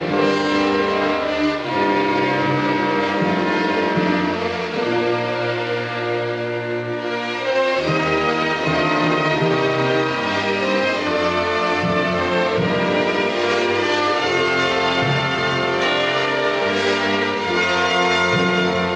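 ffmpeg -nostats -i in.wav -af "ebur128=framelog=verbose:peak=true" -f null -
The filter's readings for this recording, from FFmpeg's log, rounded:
Integrated loudness:
  I:         -18.6 LUFS
  Threshold: -28.6 LUFS
Loudness range:
  LRA:         2.9 LU
  Threshold: -38.8 LUFS
  LRA low:   -20.8 LUFS
  LRA high:  -17.9 LUFS
True peak:
  Peak:       -5.4 dBFS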